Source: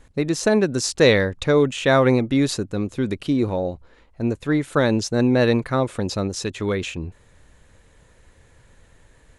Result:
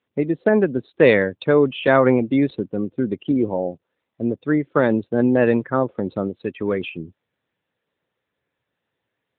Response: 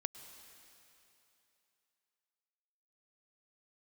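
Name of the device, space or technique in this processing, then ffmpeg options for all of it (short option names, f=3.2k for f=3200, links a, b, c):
mobile call with aggressive noise cancelling: -af "highpass=160,afftdn=nr=22:nf=-30,volume=2dB" -ar 8000 -c:a libopencore_amrnb -b:a 10200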